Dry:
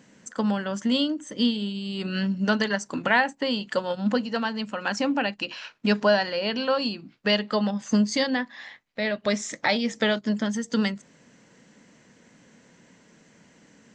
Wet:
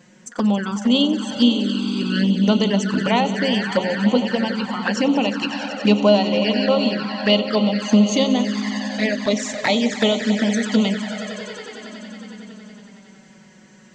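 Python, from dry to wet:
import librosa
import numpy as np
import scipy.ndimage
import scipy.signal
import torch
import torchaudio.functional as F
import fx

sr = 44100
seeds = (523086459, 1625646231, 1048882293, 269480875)

y = fx.echo_swell(x, sr, ms=92, loudest=5, wet_db=-14)
y = fx.env_flanger(y, sr, rest_ms=5.9, full_db=-20.0)
y = y * librosa.db_to_amplitude(7.0)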